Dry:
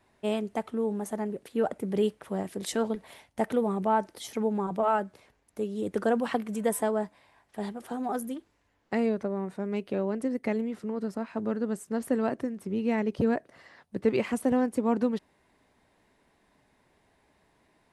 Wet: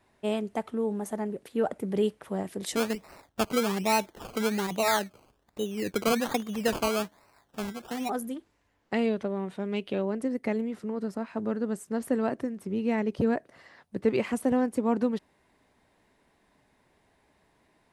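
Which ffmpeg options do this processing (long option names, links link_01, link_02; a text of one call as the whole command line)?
ffmpeg -i in.wav -filter_complex "[0:a]asplit=3[link_01][link_02][link_03];[link_01]afade=type=out:start_time=2.75:duration=0.02[link_04];[link_02]acrusher=samples=19:mix=1:aa=0.000001:lfo=1:lforange=11.4:lforate=1.2,afade=type=in:start_time=2.75:duration=0.02,afade=type=out:start_time=8.08:duration=0.02[link_05];[link_03]afade=type=in:start_time=8.08:duration=0.02[link_06];[link_04][link_05][link_06]amix=inputs=3:normalize=0,asettb=1/sr,asplit=3[link_07][link_08][link_09];[link_07]atrim=end=8.944[link_10];[link_08]atrim=start=8.94:end=10.02,asetpts=PTS-STARTPTS,afade=type=in:duration=0.004:curve=qsin,afade=type=out:start_time=1.076:duration=0.004:curve=qsin,equalizer=frequency=3200:width_type=o:width=0.66:gain=11[link_11];[link_09]atrim=start=10.016[link_12];[link_10][link_11]acrossfade=duration=0.004:curve1=hsin:curve2=qsin[link_13];[link_13][link_12]acrossfade=duration=0.004:curve1=qsin:curve2=hsin" out.wav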